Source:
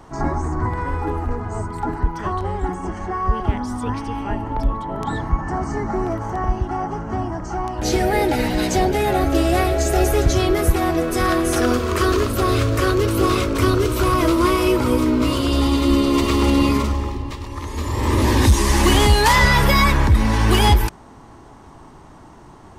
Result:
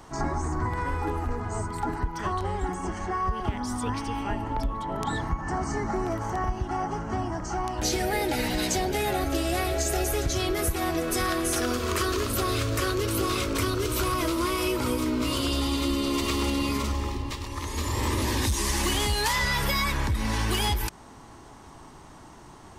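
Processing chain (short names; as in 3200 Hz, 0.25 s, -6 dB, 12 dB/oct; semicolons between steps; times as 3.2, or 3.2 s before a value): high shelf 2100 Hz +8.5 dB; compressor, threshold -18 dBFS, peak gain reduction 10 dB; gain -5 dB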